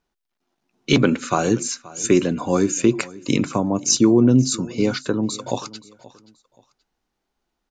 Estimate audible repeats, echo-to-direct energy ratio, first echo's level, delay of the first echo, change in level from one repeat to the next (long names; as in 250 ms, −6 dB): 2, −20.0 dB, −20.5 dB, 528 ms, −10.5 dB